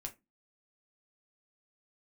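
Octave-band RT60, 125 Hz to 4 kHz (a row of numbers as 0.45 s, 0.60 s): 0.25 s, 0.35 s, 0.25 s, 0.20 s, 0.20 s, 0.15 s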